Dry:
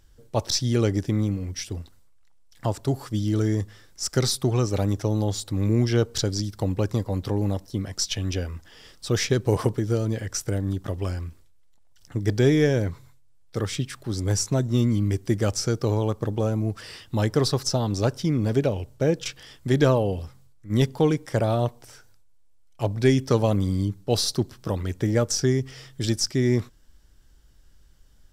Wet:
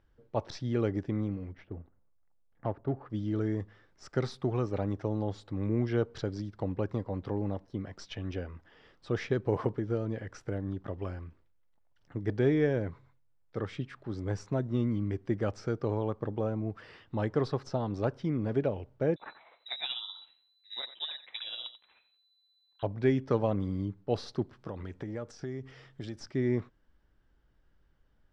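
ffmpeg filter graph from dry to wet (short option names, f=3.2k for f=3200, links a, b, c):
-filter_complex "[0:a]asettb=1/sr,asplit=3[a][b][c];[a]atrim=end=1.534[d];[b]atrim=start=1.53:end=3.1,asetpts=PTS-STARTPTS,afade=t=in:d=0.004:c=qsin,afade=t=out:st=1.566:d=0.004:c=qsin,highshelf=f=6.8k:g=-11.5,bandreject=f=980:w=16,adynamicsmooth=sensitivity=4:basefreq=1.3k[e];[c]atrim=start=3.096[f];[d][e]acrossfade=d=0.004:c1=hsin:c2=qsin[g];[g][f]acrossfade=d=0.004:c1=qsin:c2=hsin,asettb=1/sr,asplit=3[h][i][j];[h]atrim=end=19.164[k];[i]atrim=start=19.16:end=22.83,asetpts=PTS-STARTPTS,afade=t=in:d=0.004:c=qsin,afade=t=out:st=3.666:d=0.004:c=qsin,tremolo=f=16:d=0.53,aecho=1:1:89:0.224,atrim=end_sample=161847,lowpass=f=3.4k:t=q:w=0.5098,lowpass=f=3.4k:t=q:w=0.6013,lowpass=f=3.4k:t=q:w=0.9,lowpass=f=3.4k:t=q:w=2.563,afreqshift=-4000[l];[j]atrim=start=22.826[m];[k][l]acrossfade=d=0.004:c1=hsin:c2=qsin[n];[n][m]acrossfade=d=0.004:c1=qsin:c2=hsin,asettb=1/sr,asplit=3[o][p][q];[o]atrim=end=24.534[r];[p]atrim=start=24.53:end=26.2,asetpts=PTS-STARTPTS,afade=t=in:d=0.004:c=qsin,afade=t=out:st=1.666:d=0.004:c=qsin,highshelf=f=4.3k:g=6.5,acompressor=threshold=-26dB:ratio=5:attack=3.2:release=140:knee=1:detection=peak[s];[q]atrim=start=26.196[t];[r][s]acrossfade=d=0.004:c1=hsin:c2=qsin[u];[u][t]acrossfade=d=0.004:c1=qsin:c2=hsin,lowpass=2k,lowshelf=f=120:g=-8.5,volume=-5.5dB"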